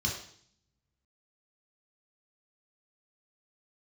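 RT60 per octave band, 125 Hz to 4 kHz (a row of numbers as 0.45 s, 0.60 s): 0.95 s, 0.85 s, 0.60 s, 0.55 s, 0.60 s, 0.70 s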